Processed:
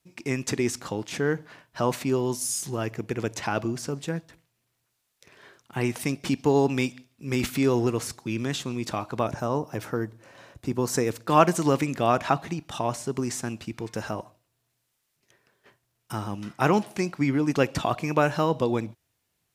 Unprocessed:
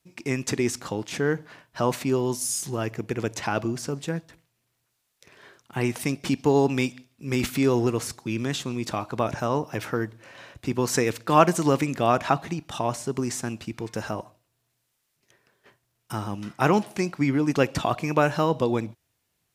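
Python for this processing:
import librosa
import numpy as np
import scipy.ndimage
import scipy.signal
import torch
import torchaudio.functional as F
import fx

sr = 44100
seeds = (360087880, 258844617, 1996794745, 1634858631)

y = fx.peak_eq(x, sr, hz=2600.0, db=-6.5, octaves=1.8, at=(9.27, 11.28))
y = y * 10.0 ** (-1.0 / 20.0)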